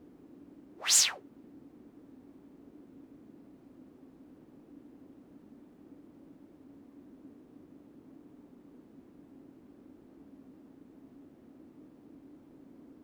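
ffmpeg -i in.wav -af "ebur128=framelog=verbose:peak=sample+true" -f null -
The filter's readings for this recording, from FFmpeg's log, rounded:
Integrated loudness:
  I:         -25.2 LUFS
  Threshold: -48.3 LUFS
Loudness range:
  LRA:        23.5 LU
  Threshold: -61.9 LUFS
  LRA low:   -55.7 LUFS
  LRA high:  -32.1 LUFS
Sample peak:
  Peak:      -10.9 dBFS
True peak:
  Peak:      -10.7 dBFS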